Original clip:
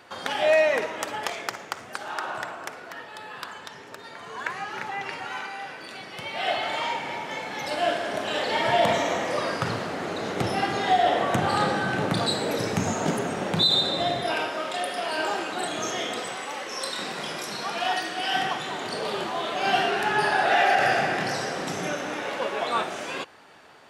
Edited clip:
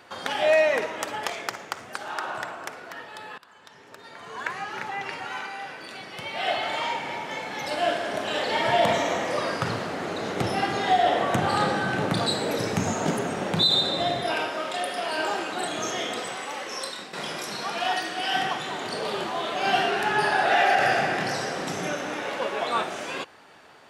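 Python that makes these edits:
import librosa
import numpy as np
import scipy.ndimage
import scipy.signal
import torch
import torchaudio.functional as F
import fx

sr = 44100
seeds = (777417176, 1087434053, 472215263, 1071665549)

y = fx.edit(x, sr, fx.fade_in_from(start_s=3.38, length_s=1.01, floor_db=-21.5),
    fx.fade_out_to(start_s=16.75, length_s=0.38, floor_db=-12.5), tone=tone)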